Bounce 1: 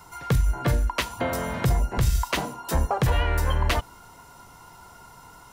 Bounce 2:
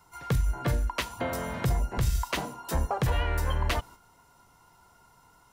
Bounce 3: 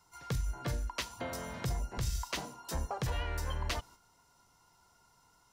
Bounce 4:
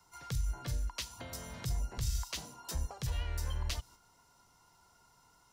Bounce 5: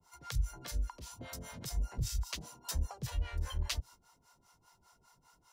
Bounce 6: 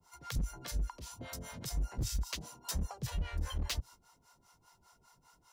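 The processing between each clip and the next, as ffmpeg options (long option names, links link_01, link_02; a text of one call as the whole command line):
ffmpeg -i in.wav -af "agate=range=-7dB:threshold=-41dB:ratio=16:detection=peak,volume=-4.5dB" out.wav
ffmpeg -i in.wav -af "equalizer=frequency=5500:width_type=o:width=1.2:gain=8,volume=-8.5dB" out.wav
ffmpeg -i in.wav -filter_complex "[0:a]acrossover=split=140|3000[link_01][link_02][link_03];[link_02]acompressor=threshold=-48dB:ratio=6[link_04];[link_01][link_04][link_03]amix=inputs=3:normalize=0,volume=1dB" out.wav
ffmpeg -i in.wav -filter_complex "[0:a]acrossover=split=540[link_01][link_02];[link_01]aeval=exprs='val(0)*(1-1/2+1/2*cos(2*PI*5*n/s))':channel_layout=same[link_03];[link_02]aeval=exprs='val(0)*(1-1/2-1/2*cos(2*PI*5*n/s))':channel_layout=same[link_04];[link_03][link_04]amix=inputs=2:normalize=0,volume=3.5dB" out.wav
ffmpeg -i in.wav -af "aeval=exprs='0.0376*(abs(mod(val(0)/0.0376+3,4)-2)-1)':channel_layout=same,volume=1dB" out.wav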